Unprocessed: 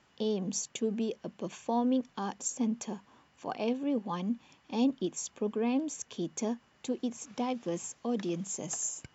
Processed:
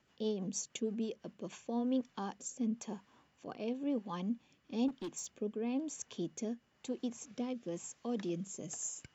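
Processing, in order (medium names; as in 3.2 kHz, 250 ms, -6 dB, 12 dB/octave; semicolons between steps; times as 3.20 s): 4.88–5.38 s: overload inside the chain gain 31.5 dB; rotary cabinet horn 6.3 Hz, later 1 Hz, at 0.95 s; trim -3.5 dB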